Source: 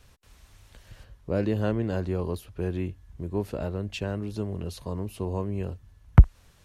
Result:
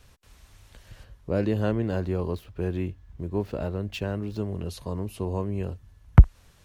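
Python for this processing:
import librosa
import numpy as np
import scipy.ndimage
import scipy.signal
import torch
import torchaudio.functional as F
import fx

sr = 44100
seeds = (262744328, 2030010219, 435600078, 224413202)

y = fx.median_filter(x, sr, points=5, at=(1.81, 4.48))
y = F.gain(torch.from_numpy(y), 1.0).numpy()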